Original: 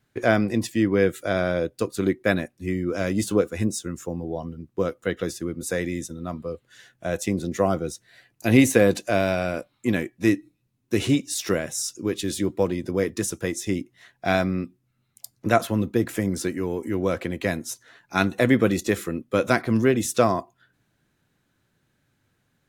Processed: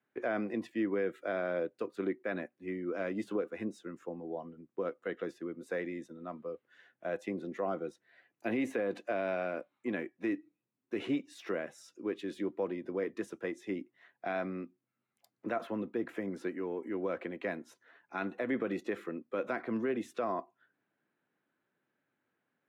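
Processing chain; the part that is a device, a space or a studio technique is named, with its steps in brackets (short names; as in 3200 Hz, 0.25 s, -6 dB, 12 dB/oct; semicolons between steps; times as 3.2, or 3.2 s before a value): DJ mixer with the lows and highs turned down (three-band isolator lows -15 dB, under 220 Hz, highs -23 dB, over 2800 Hz; limiter -15.5 dBFS, peak gain reduction 9.5 dB); HPF 140 Hz 12 dB/oct; gain -8 dB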